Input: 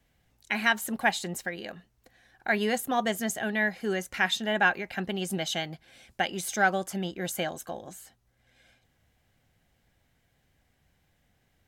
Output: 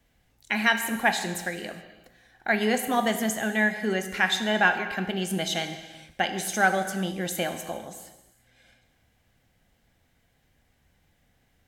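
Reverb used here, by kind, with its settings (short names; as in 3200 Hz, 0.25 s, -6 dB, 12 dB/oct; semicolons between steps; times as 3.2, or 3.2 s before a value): non-linear reverb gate 0.45 s falling, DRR 7 dB; gain +2 dB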